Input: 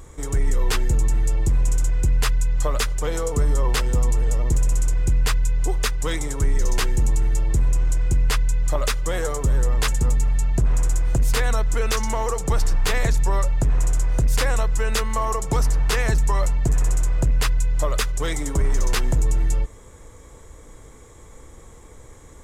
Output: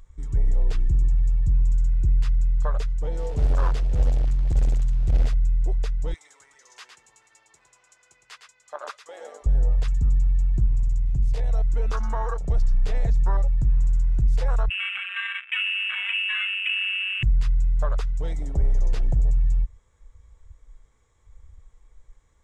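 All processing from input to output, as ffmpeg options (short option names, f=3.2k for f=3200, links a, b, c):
-filter_complex "[0:a]asettb=1/sr,asplit=3[a][b][c];[a]atrim=end=3.174[d];[b]atrim=start=3.17:end=5.34,asetpts=PTS-STARTPTS,afade=t=in:d=0.004:c=qsin,afade=t=out:st=2.166:d=0.004:c=qsin,bandreject=f=60:t=h:w=6,bandreject=f=120:t=h:w=6,bandreject=f=180:t=h:w=6,bandreject=f=240:t=h:w=6,bandreject=f=300:t=h:w=6,bandreject=f=360:t=h:w=6,bandreject=f=420:t=h:w=6,acrusher=bits=2:mode=log:mix=0:aa=0.000001[e];[c]atrim=start=5.336[f];[d][e]acrossfade=d=0.004:c1=hsin:c2=qsin[g];[g][f]acrossfade=d=0.004:c1=qsin:c2=hsin,asettb=1/sr,asplit=3[h][i][j];[h]atrim=end=6.144[k];[i]atrim=start=6.14:end=9.46,asetpts=PTS-STARTPTS,afade=t=in:d=0.004:c=qsin,afade=t=out:st=3.316:d=0.004:c=qsin,highpass=630,aecho=1:1:110:0.501,atrim=end_sample=146412[l];[j]atrim=start=9.456[m];[k][l]acrossfade=d=0.004:c1=hsin:c2=qsin[n];[n][m]acrossfade=d=0.004:c1=qsin:c2=hsin,asettb=1/sr,asplit=3[o][p][q];[o]atrim=end=10.664[r];[p]atrim=start=10.66:end=11.51,asetpts=PTS-STARTPTS,afade=t=in:d=0.004:c=qsin,afade=t=out:st=0.846:d=0.004:c=qsin,equalizer=f=1.4k:t=o:w=0.46:g=-8.5,tremolo=f=60:d=0.4[s];[q]atrim=start=11.506[t];[r][s]acrossfade=d=0.004:c1=hsin:c2=qsin[u];[u][t]acrossfade=d=0.004:c1=qsin:c2=hsin,asettb=1/sr,asplit=3[v][w][x];[v]atrim=end=14.694[y];[w]atrim=start=14.69:end=17.23,asetpts=PTS-STARTPTS,afade=t=in:d=0.004:c=qsin,afade=t=out:st=2.536:d=0.004:c=qsin,flanger=delay=6.6:depth=8.1:regen=63:speed=1.1:shape=sinusoidal,lowpass=f=2.3k:t=q:w=0.5098,lowpass=f=2.3k:t=q:w=0.6013,lowpass=f=2.3k:t=q:w=0.9,lowpass=f=2.3k:t=q:w=2.563,afreqshift=-2700[z];[x]atrim=start=17.226[aa];[y][z]acrossfade=d=0.004:c1=hsin:c2=qsin[ab];[ab][aa]acrossfade=d=0.004:c1=qsin:c2=hsin,lowpass=6k,afwtdn=0.0708,equalizer=f=320:w=0.61:g=-10"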